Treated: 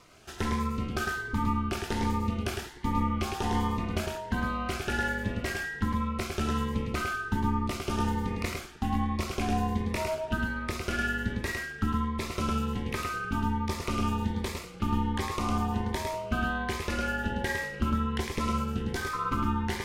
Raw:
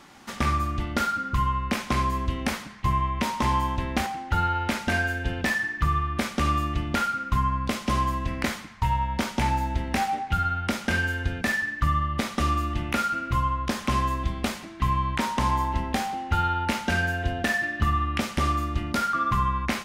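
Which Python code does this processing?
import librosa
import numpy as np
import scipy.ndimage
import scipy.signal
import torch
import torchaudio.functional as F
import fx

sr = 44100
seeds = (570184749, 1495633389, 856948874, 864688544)

y = x + 10.0 ** (-4.0 / 20.0) * np.pad(x, (int(106 * sr / 1000.0), 0))[:len(x)]
y = y * np.sin(2.0 * np.pi * 150.0 * np.arange(len(y)) / sr)
y = fx.notch_cascade(y, sr, direction='rising', hz=1.3)
y = F.gain(torch.from_numpy(y), -2.0).numpy()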